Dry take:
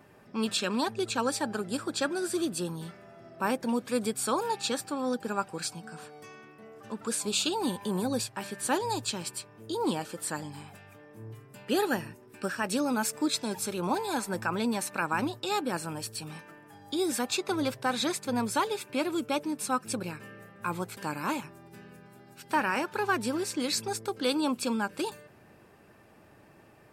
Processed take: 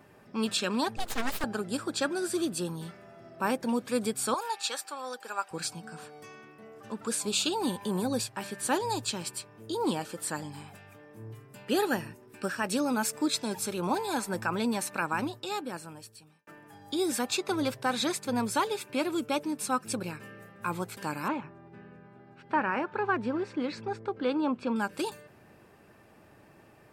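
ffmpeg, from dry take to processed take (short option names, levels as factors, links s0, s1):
-filter_complex "[0:a]asettb=1/sr,asplit=3[s0][s1][s2];[s0]atrim=end=0.974[s3];[s1]atrim=start=0.97:end=1.44,asetpts=PTS-STARTPTS,afade=t=in:d=0.004:c=qsin,afade=t=out:st=0.466:d=0.004:c=qsin,aeval=exprs='abs(val(0))':c=same[s4];[s2]atrim=start=1.436[s5];[s3][s4]acrossfade=d=0.004:c1=hsin:c2=qsin[s6];[s6][s5]acrossfade=d=0.004:c1=qsin:c2=hsin,asettb=1/sr,asplit=3[s7][s8][s9];[s7]atrim=end=4.344[s10];[s8]atrim=start=4.34:end=5.51,asetpts=PTS-STARTPTS,afade=t=in:d=0.004:c=qsin,afade=t=out:st=1.166:d=0.004:c=qsin,highpass=760[s11];[s9]atrim=start=5.506[s12];[s10][s11]acrossfade=d=0.004:c1=hsin:c2=qsin[s13];[s13][s12]acrossfade=d=0.004:c1=qsin:c2=hsin,asettb=1/sr,asplit=3[s14][s15][s16];[s14]atrim=end=21.284[s17];[s15]atrim=start=21.28:end=24.76,asetpts=PTS-STARTPTS,afade=t=in:d=0.004:c=qsin,afade=t=out:st=3.476:d=0.004:c=qsin,lowpass=2000[s18];[s16]atrim=start=24.756[s19];[s17][s18]acrossfade=d=0.004:c1=hsin:c2=qsin[s20];[s20][s19]acrossfade=d=0.004:c1=qsin:c2=hsin,asplit=2[s21][s22];[s21]atrim=end=16.47,asetpts=PTS-STARTPTS,afade=t=out:st=14.93:d=1.54[s23];[s22]atrim=start=16.47,asetpts=PTS-STARTPTS,afade=t=in:d=0.004:c=hsin[s24];[s23][s24]concat=n=2:v=0:a=1"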